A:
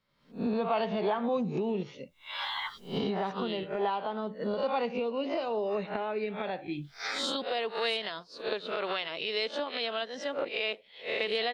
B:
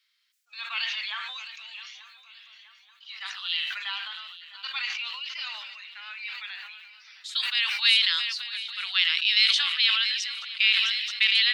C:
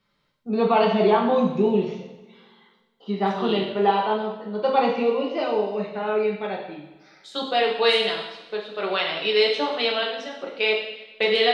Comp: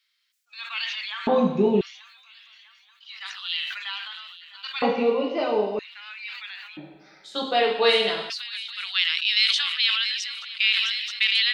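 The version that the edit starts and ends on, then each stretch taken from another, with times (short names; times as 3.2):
B
1.27–1.81 from C
4.82–5.79 from C
6.77–8.3 from C
not used: A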